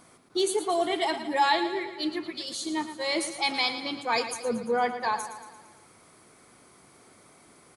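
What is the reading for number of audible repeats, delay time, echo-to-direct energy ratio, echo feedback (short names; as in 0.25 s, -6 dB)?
5, 0.114 s, -9.5 dB, 57%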